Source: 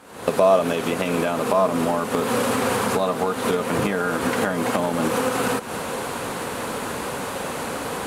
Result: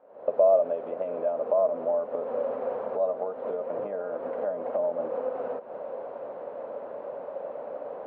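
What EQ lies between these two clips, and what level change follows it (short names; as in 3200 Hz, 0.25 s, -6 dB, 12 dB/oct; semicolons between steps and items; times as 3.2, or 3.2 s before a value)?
band-pass 590 Hz, Q 6.6; air absorption 330 m; +2.5 dB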